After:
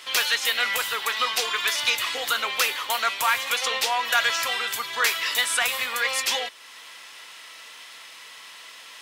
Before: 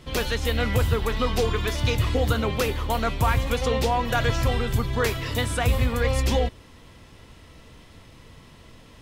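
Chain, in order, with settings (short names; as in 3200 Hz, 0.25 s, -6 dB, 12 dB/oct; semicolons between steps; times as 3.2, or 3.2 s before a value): in parallel at -0.5 dB: compressor, threshold -36 dBFS, peak gain reduction 17.5 dB; on the sum: HPF 1400 Hz 12 dB/oct; overloaded stage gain 19 dB; gain +7 dB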